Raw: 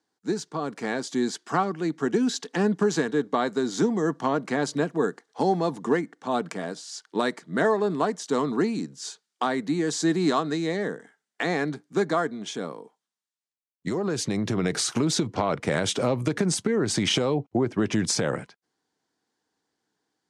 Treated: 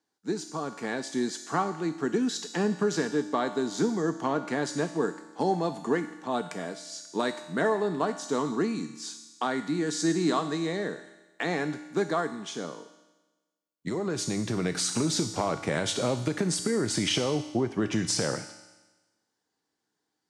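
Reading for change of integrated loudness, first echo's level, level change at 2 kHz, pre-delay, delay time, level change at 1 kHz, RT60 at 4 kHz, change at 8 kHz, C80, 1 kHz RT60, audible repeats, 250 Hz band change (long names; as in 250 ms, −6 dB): −3.0 dB, no echo audible, −3.0 dB, 3 ms, no echo audible, −3.0 dB, 1.2 s, −1.0 dB, 12.5 dB, 1.2 s, no echo audible, −3.0 dB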